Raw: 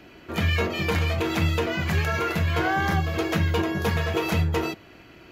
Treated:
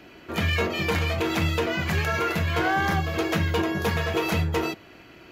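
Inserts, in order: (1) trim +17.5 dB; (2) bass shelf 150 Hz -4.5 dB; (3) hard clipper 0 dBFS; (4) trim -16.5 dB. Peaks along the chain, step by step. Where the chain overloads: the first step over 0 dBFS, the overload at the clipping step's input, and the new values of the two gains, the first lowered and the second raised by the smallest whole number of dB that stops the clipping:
+5.5 dBFS, +4.0 dBFS, 0.0 dBFS, -16.5 dBFS; step 1, 4.0 dB; step 1 +13.5 dB, step 4 -12.5 dB

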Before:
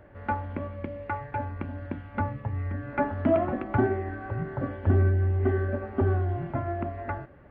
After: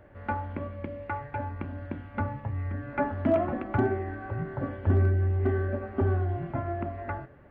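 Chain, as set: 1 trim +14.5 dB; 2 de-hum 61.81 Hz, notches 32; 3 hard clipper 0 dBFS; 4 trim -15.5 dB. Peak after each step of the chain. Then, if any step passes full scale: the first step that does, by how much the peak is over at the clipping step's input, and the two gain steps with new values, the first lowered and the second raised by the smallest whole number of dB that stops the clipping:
+3.0 dBFS, +3.0 dBFS, 0.0 dBFS, -15.5 dBFS; step 1, 3.0 dB; step 1 +11.5 dB, step 4 -12.5 dB

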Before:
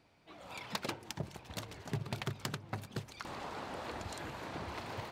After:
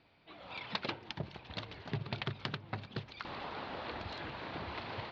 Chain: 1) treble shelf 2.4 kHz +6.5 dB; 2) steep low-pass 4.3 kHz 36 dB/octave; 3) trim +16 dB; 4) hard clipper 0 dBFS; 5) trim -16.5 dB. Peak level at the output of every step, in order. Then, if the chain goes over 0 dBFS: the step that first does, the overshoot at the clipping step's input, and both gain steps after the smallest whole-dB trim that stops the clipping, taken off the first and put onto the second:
-19.0 dBFS, -20.0 dBFS, -4.0 dBFS, -4.0 dBFS, -20.5 dBFS; nothing clips

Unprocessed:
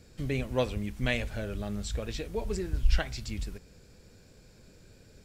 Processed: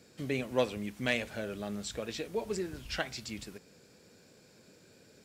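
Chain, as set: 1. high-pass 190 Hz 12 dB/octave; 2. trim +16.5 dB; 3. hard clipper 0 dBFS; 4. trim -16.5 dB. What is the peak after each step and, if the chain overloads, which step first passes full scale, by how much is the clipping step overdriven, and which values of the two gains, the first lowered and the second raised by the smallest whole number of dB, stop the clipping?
-13.0 dBFS, +3.5 dBFS, 0.0 dBFS, -16.5 dBFS; step 2, 3.5 dB; step 2 +12.5 dB, step 4 -12.5 dB

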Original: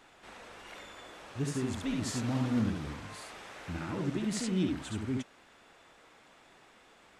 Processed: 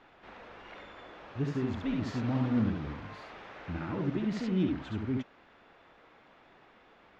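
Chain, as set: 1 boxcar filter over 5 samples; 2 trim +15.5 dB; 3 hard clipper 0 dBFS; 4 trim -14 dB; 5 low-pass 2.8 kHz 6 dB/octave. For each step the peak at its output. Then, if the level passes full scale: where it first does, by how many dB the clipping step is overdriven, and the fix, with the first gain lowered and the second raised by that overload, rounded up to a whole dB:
-20.0 dBFS, -4.5 dBFS, -4.5 dBFS, -18.5 dBFS, -18.5 dBFS; nothing clips

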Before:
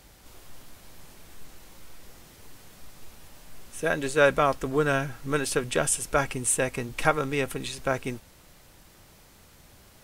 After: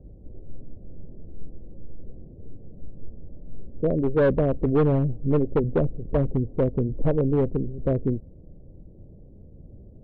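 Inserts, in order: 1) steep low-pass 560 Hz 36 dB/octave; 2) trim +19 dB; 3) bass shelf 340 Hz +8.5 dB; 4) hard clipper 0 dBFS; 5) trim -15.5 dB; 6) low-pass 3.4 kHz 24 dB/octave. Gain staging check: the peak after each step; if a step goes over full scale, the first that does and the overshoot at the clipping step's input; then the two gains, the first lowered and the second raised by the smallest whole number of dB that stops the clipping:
-14.5 dBFS, +4.5 dBFS, +8.5 dBFS, 0.0 dBFS, -15.5 dBFS, -15.0 dBFS; step 2, 8.5 dB; step 2 +10 dB, step 5 -6.5 dB

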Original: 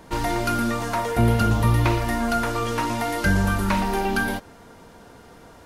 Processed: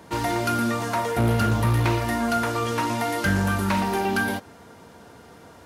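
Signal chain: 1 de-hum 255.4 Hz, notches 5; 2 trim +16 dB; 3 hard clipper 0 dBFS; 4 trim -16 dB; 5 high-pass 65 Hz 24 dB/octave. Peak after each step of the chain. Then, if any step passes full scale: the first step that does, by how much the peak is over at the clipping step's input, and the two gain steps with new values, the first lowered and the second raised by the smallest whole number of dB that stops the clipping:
-8.0 dBFS, +8.0 dBFS, 0.0 dBFS, -16.0 dBFS, -9.5 dBFS; step 2, 8.0 dB; step 2 +8 dB, step 4 -8 dB

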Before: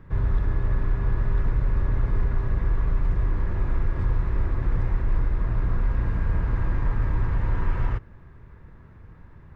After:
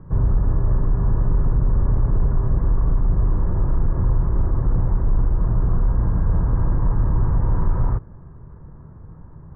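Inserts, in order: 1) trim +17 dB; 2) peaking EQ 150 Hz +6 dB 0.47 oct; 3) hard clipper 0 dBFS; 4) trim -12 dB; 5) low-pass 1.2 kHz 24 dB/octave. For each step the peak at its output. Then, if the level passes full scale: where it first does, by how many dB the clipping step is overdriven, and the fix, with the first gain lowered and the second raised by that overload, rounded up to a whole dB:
+3.5 dBFS, +4.5 dBFS, 0.0 dBFS, -12.0 dBFS, -11.5 dBFS; step 1, 4.5 dB; step 1 +12 dB, step 4 -7 dB

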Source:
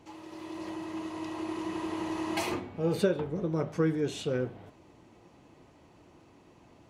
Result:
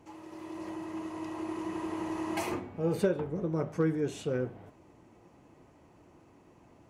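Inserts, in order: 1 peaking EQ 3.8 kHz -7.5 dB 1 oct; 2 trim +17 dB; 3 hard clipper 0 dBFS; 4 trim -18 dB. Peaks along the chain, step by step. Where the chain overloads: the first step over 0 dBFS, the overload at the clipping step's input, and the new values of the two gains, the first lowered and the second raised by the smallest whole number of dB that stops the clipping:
-14.0 dBFS, +3.0 dBFS, 0.0 dBFS, -18.0 dBFS; step 2, 3.0 dB; step 2 +14 dB, step 4 -15 dB

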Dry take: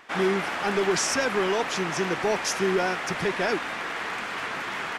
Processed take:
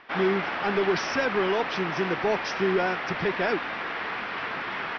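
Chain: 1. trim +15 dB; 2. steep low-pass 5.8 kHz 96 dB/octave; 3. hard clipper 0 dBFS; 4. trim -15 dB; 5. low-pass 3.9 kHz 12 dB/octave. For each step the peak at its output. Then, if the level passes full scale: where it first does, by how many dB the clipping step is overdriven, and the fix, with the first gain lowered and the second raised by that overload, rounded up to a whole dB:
+3.0 dBFS, +3.0 dBFS, 0.0 dBFS, -15.0 dBFS, -14.5 dBFS; step 1, 3.0 dB; step 1 +12 dB, step 4 -12 dB

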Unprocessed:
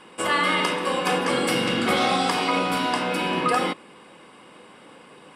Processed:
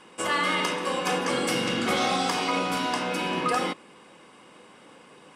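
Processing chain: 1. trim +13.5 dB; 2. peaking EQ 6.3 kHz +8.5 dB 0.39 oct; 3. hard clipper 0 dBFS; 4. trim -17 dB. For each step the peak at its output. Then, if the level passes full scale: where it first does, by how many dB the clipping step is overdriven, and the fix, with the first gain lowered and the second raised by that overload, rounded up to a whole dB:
+4.0 dBFS, +5.0 dBFS, 0.0 dBFS, -17.0 dBFS; step 1, 5.0 dB; step 1 +8.5 dB, step 4 -12 dB

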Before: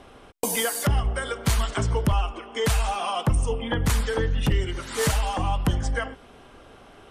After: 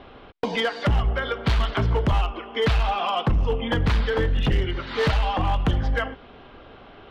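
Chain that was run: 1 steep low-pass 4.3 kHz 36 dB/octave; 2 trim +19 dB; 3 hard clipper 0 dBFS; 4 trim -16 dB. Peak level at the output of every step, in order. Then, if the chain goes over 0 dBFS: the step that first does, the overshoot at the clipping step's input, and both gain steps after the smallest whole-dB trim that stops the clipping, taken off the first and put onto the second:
-13.0 dBFS, +6.0 dBFS, 0.0 dBFS, -16.0 dBFS; step 2, 6.0 dB; step 2 +13 dB, step 4 -10 dB

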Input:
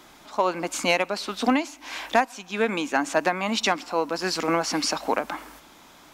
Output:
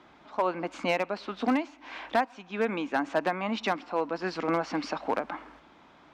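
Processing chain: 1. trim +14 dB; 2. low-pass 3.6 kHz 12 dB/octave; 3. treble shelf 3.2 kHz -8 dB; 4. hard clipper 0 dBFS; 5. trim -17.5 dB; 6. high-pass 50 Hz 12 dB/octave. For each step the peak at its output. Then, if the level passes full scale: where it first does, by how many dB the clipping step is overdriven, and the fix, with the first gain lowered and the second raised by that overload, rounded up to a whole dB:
+4.5 dBFS, +4.5 dBFS, +4.0 dBFS, 0.0 dBFS, -17.5 dBFS, -15.5 dBFS; step 1, 4.0 dB; step 1 +10 dB, step 5 -13.5 dB

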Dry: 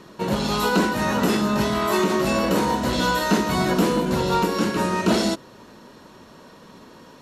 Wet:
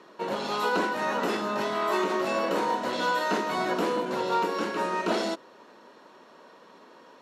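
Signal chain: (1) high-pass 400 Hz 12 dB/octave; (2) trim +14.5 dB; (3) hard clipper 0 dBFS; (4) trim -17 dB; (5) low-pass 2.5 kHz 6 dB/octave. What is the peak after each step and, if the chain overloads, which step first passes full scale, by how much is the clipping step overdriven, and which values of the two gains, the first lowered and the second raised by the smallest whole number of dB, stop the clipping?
-10.5 dBFS, +4.0 dBFS, 0.0 dBFS, -17.0 dBFS, -17.0 dBFS; step 2, 4.0 dB; step 2 +10.5 dB, step 4 -13 dB

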